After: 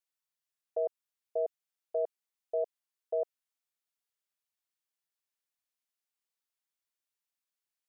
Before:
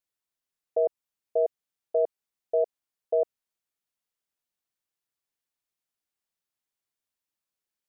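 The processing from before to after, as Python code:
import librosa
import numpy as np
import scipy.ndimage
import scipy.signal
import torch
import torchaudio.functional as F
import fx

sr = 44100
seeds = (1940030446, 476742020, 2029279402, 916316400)

y = fx.low_shelf(x, sr, hz=470.0, db=-11.5)
y = F.gain(torch.from_numpy(y), -2.5).numpy()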